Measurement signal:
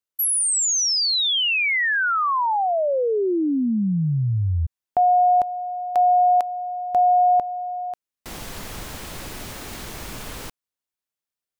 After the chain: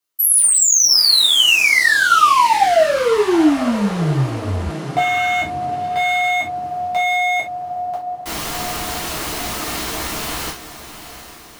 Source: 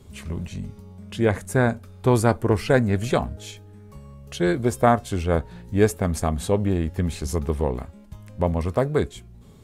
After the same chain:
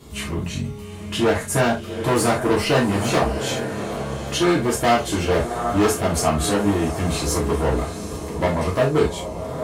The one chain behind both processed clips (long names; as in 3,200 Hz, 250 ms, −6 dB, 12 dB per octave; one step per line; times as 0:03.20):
in parallel at +0.5 dB: downward compressor 4 to 1, threshold −29 dBFS
on the sum: dynamic equaliser 590 Hz, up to +3 dB, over −28 dBFS, Q 3.2
on a send: feedback delay with all-pass diffusion 784 ms, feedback 50%, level −12 dB
on the sum: hard clipping −16.5 dBFS
low-shelf EQ 170 Hz −9.5 dB
reverb whose tail is shaped and stops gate 100 ms falling, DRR −6 dB
level −1.5 dB